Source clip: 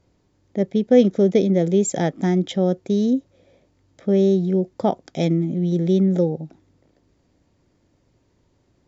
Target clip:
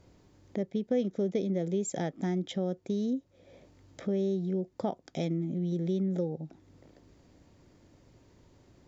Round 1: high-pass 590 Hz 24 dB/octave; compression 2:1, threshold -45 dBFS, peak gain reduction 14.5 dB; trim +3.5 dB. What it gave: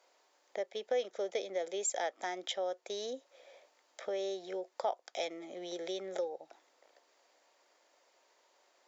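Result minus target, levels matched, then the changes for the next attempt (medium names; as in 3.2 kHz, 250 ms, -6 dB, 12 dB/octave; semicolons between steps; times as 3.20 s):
500 Hz band +3.0 dB
remove: high-pass 590 Hz 24 dB/octave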